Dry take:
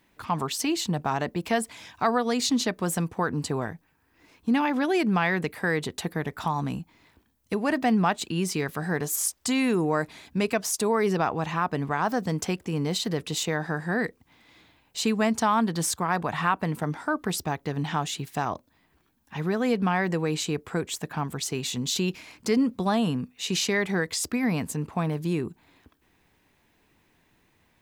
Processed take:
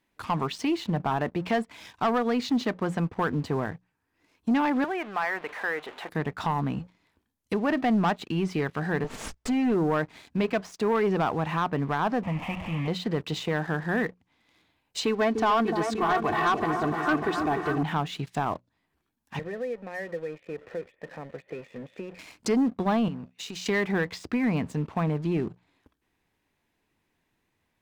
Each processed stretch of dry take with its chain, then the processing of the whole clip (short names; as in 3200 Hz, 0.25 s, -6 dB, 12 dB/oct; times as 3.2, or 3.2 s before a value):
4.84–6.09 zero-crossing step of -31 dBFS + HPF 660 Hz + air absorption 470 m
9.04–9.72 minimum comb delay 4.5 ms + high shelf 2200 Hz -8 dB
12.23–12.88 delta modulation 16 kbps, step -29 dBFS + fixed phaser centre 1500 Hz, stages 6
15.05–17.83 comb 2.7 ms, depth 70% + repeats that get brighter 0.298 s, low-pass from 750 Hz, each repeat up 2 oct, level -6 dB
19.39–22.19 zero-crossing step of -35 dBFS + vocal tract filter e + three-band squash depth 70%
23.08–23.66 LPF 8800 Hz + compressor 10:1, threshold -35 dBFS
whole clip: treble ducked by the level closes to 2500 Hz, closed at -25 dBFS; notches 60/120/180 Hz; sample leveller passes 2; gain -6 dB